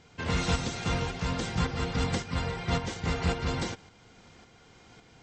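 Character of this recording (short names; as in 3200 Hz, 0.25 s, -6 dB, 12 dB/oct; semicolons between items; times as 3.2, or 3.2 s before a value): tremolo saw up 1.8 Hz, depth 45%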